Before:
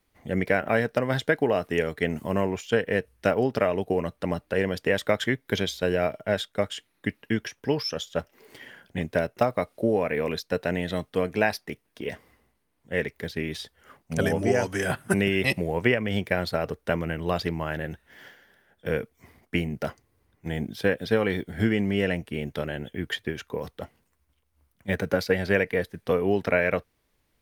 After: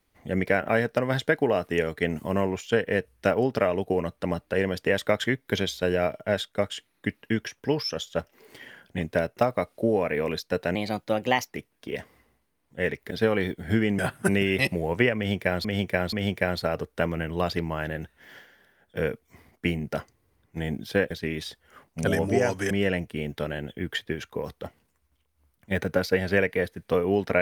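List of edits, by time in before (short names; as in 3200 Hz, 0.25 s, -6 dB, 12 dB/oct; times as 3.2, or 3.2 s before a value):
10.75–11.63 speed 118%
13.24–14.84 swap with 21–21.88
16.02–16.5 loop, 3 plays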